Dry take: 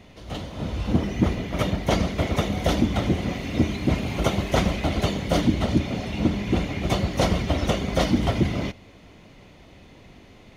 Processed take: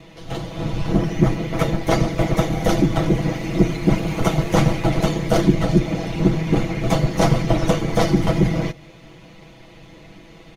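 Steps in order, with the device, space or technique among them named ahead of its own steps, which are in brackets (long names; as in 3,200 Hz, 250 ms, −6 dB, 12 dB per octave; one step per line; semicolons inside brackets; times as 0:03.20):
ring-modulated robot voice (ring modulation 45 Hz; comb filter 6.1 ms, depth 87%)
dynamic equaliser 3,200 Hz, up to −6 dB, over −45 dBFS, Q 1.3
level +5.5 dB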